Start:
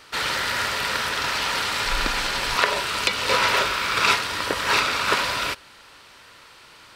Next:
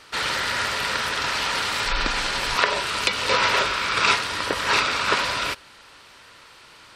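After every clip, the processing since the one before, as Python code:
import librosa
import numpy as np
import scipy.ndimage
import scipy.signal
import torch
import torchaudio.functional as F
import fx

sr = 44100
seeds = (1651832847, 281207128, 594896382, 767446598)

y = fx.spec_gate(x, sr, threshold_db=-30, keep='strong')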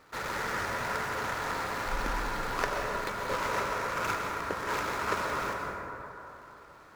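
y = scipy.signal.medfilt(x, 15)
y = fx.rider(y, sr, range_db=10, speed_s=2.0)
y = fx.rev_plate(y, sr, seeds[0], rt60_s=3.3, hf_ratio=0.3, predelay_ms=110, drr_db=0.5)
y = F.gain(torch.from_numpy(y), -8.5).numpy()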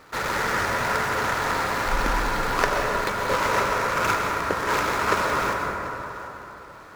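y = x + 10.0 ** (-17.5 / 20.0) * np.pad(x, (int(737 * sr / 1000.0), 0))[:len(x)]
y = F.gain(torch.from_numpy(y), 8.5).numpy()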